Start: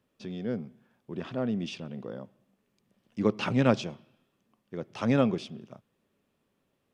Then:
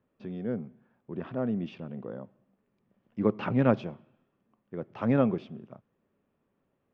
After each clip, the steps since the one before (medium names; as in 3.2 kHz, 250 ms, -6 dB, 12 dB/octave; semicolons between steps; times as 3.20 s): low-pass 1.8 kHz 12 dB/octave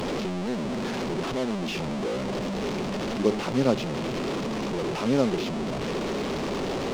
one-bit delta coder 32 kbps, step -23.5 dBFS; hysteresis with a dead band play -37.5 dBFS; fifteen-band graphic EQ 100 Hz -7 dB, 400 Hz +5 dB, 1.6 kHz -5 dB